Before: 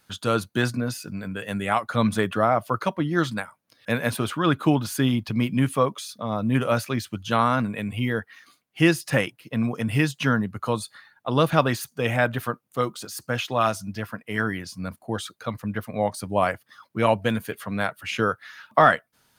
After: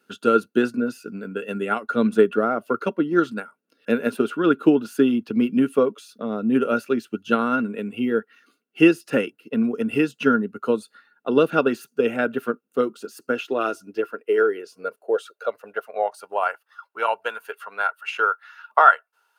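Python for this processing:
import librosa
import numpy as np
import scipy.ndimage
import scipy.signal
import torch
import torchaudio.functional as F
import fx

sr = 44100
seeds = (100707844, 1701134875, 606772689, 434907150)

y = fx.small_body(x, sr, hz=(420.0, 1400.0, 2700.0), ring_ms=30, db=16)
y = fx.transient(y, sr, attack_db=4, sustain_db=-1)
y = fx.filter_sweep_highpass(y, sr, from_hz=230.0, to_hz=890.0, start_s=12.97, end_s=16.56, q=3.2)
y = F.gain(torch.from_numpy(y), -9.5).numpy()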